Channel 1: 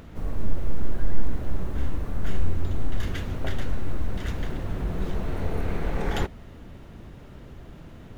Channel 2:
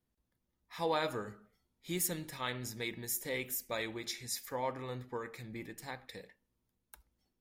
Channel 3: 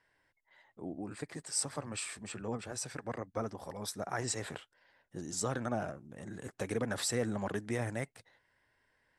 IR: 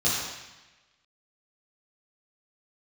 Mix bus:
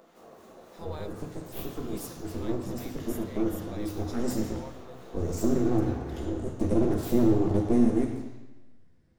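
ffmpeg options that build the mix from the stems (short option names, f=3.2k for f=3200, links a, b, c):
-filter_complex "[0:a]highpass=550,acrossover=split=1500[a][b];[a]aeval=exprs='val(0)*(1-0.5/2+0.5/2*cos(2*PI*3.5*n/s))':c=same[c];[b]aeval=exprs='val(0)*(1-0.5/2-0.5/2*cos(2*PI*3.5*n/s))':c=same[d];[c][d]amix=inputs=2:normalize=0,acompressor=threshold=-47dB:ratio=2,volume=-3.5dB,asplit=2[e][f];[f]volume=-12.5dB[g];[1:a]volume=-9dB[h];[2:a]asubboost=boost=11.5:cutoff=240,aeval=exprs='abs(val(0))':c=same,volume=-2.5dB,asplit=2[i][j];[j]volume=-12dB[k];[3:a]atrim=start_sample=2205[l];[g][k]amix=inputs=2:normalize=0[m];[m][l]afir=irnorm=-1:irlink=0[n];[e][h][i][n]amix=inputs=4:normalize=0,equalizer=f=2.2k:w=0.73:g=-5.5"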